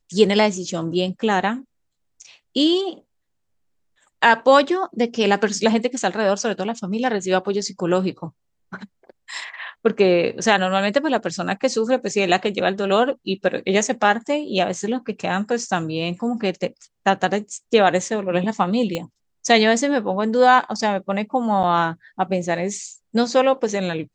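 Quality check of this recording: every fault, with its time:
18.95 s: pop -11 dBFS
21.63–21.64 s: dropout 8.1 ms

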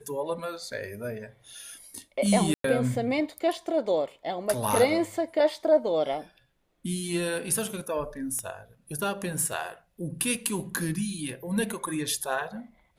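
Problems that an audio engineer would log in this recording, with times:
2.54–2.64 s: dropout 103 ms
8.39 s: pop -21 dBFS

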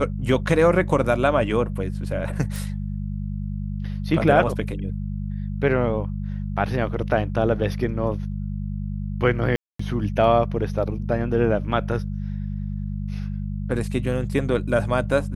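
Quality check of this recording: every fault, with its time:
hum 50 Hz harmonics 4 -28 dBFS
2.56 s: pop
9.56–9.79 s: dropout 234 ms

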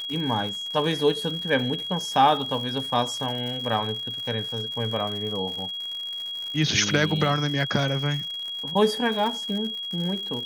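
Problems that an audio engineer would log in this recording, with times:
crackle 130 per s -32 dBFS
whine 3.3 kHz -30 dBFS

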